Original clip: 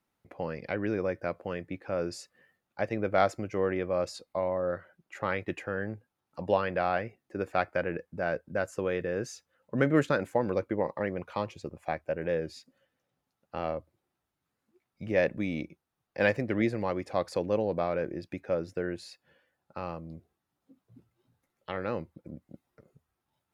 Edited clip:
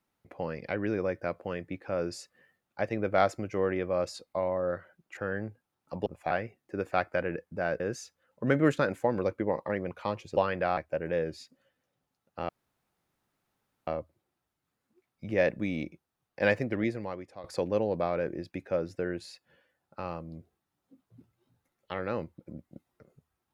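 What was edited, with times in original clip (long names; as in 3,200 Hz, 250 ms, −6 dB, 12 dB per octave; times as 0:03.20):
0:05.17–0:05.63: remove
0:06.52–0:06.92: swap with 0:11.68–0:11.93
0:08.41–0:09.11: remove
0:13.65: splice in room tone 1.38 s
0:16.39–0:17.22: fade out, to −18.5 dB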